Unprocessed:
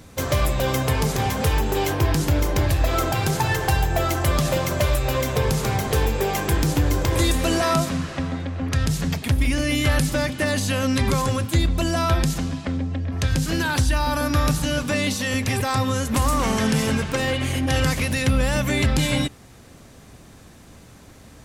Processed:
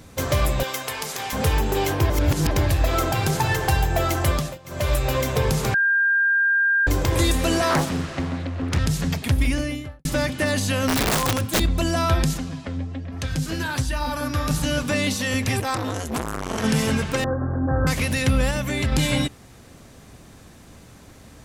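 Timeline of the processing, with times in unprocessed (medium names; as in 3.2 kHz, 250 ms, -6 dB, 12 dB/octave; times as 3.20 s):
0.63–1.33 s: high-pass 1.3 kHz 6 dB/octave
2.10–2.51 s: reverse
4.29–4.93 s: dip -23.5 dB, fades 0.29 s
5.74–6.87 s: bleep 1.6 kHz -16 dBFS
7.69–8.79 s: loudspeaker Doppler distortion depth 0.99 ms
9.43–10.05 s: studio fade out
10.88–11.60 s: integer overflow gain 15 dB
12.37–14.51 s: flange 1.2 Hz, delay 3.1 ms, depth 8 ms, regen +46%
15.60–16.64 s: transformer saturation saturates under 930 Hz
17.24–17.87 s: steep low-pass 1.6 kHz 96 dB/octave
18.51–18.92 s: gain -3.5 dB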